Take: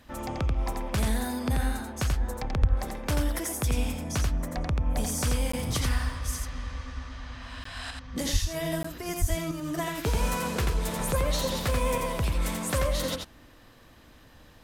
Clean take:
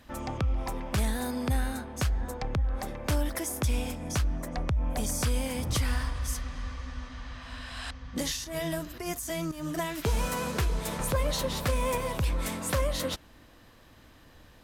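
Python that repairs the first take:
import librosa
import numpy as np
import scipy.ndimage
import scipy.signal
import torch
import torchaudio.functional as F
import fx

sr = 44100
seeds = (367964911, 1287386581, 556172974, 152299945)

y = fx.highpass(x, sr, hz=140.0, slope=24, at=(2.6, 2.72), fade=0.02)
y = fx.highpass(y, sr, hz=140.0, slope=24, at=(8.32, 8.44), fade=0.02)
y = fx.highpass(y, sr, hz=140.0, slope=24, at=(9.2, 9.32), fade=0.02)
y = fx.fix_interpolate(y, sr, at_s=(5.52, 7.64, 8.83), length_ms=14.0)
y = fx.fix_echo_inverse(y, sr, delay_ms=86, level_db=-4.0)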